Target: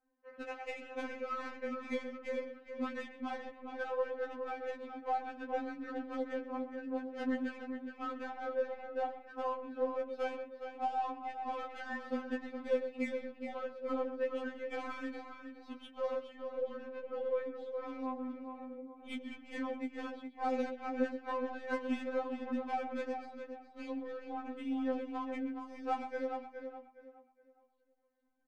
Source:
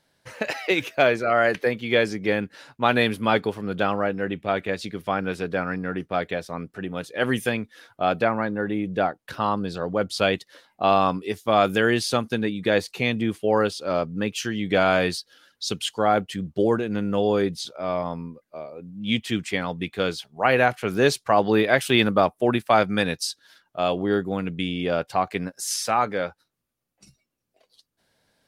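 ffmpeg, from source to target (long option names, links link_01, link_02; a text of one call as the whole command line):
ffmpeg -i in.wav -filter_complex "[0:a]acompressor=threshold=-22dB:ratio=4,flanger=delay=6.4:depth=9.2:regen=23:speed=0.88:shape=sinusoidal,aeval=exprs='0.237*(cos(1*acos(clip(val(0)/0.237,-1,1)))-cos(1*PI/2))+0.0188*(cos(2*acos(clip(val(0)/0.237,-1,1)))-cos(2*PI/2))+0.00188*(cos(5*acos(clip(val(0)/0.237,-1,1)))-cos(5*PI/2))':channel_layout=same,equalizer=frequency=8300:width=0.37:gain=-10,asplit=2[link_01][link_02];[link_02]aecho=0:1:108|127:0.126|0.266[link_03];[link_01][link_03]amix=inputs=2:normalize=0,afftfilt=real='re*lt(hypot(re,im),0.501)':imag='im*lt(hypot(re,im),0.501)':win_size=1024:overlap=0.75,bass=frequency=250:gain=-1,treble=frequency=4000:gain=-10,asplit=2[link_04][link_05];[link_05]aecho=0:1:416|832|1248|1664:0.447|0.138|0.0429|0.0133[link_06];[link_04][link_06]amix=inputs=2:normalize=0,adynamicsmooth=sensitivity=3.5:basefreq=1600,afftfilt=real='re*3.46*eq(mod(b,12),0)':imag='im*3.46*eq(mod(b,12),0)':win_size=2048:overlap=0.75,volume=-4.5dB" out.wav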